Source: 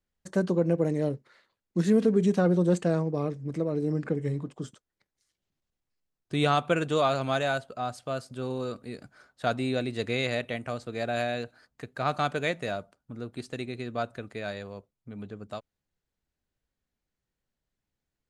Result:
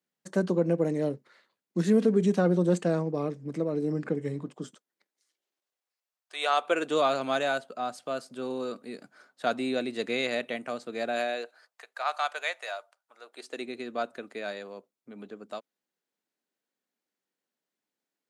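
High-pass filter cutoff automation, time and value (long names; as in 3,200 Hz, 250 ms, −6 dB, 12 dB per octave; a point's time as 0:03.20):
high-pass filter 24 dB per octave
0:04.56 160 Hz
0:06.34 700 Hz
0:06.99 200 Hz
0:11.07 200 Hz
0:11.85 680 Hz
0:13.20 680 Hz
0:13.67 230 Hz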